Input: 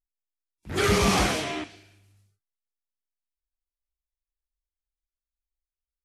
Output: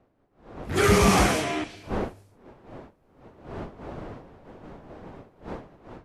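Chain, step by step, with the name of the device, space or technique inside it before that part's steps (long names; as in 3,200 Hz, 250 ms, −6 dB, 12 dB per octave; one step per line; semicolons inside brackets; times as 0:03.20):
dynamic equaliser 3,900 Hz, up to −6 dB, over −41 dBFS, Q 1.1
smartphone video outdoors (wind on the microphone 560 Hz −47 dBFS; automatic gain control gain up to 16.5 dB; level −8 dB; AAC 96 kbit/s 32,000 Hz)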